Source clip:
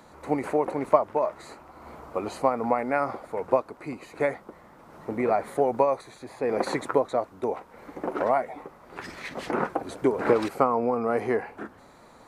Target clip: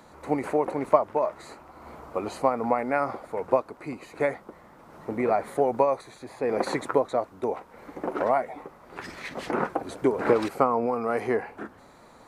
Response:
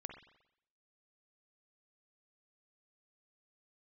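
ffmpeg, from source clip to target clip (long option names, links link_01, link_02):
-filter_complex "[0:a]asettb=1/sr,asplit=3[link_01][link_02][link_03];[link_01]atrim=end=10.864[link_04];[link_02]atrim=start=10.86:end=11.28,asetpts=PTS-STARTPTS,afade=type=in:duration=0.004:curve=qsin,afade=type=out:start_time=0.416:duration=0.004:curve=qsin,tiltshelf=frequency=970:gain=-3[link_05];[link_03]atrim=start=11.276[link_06];[link_04][link_05]acrossfade=duration=0.004:curve1=hsin:curve2=qsin[link_07];[link_07][link_06]acrossfade=duration=0.004:curve1=qsin:curve2=hsin"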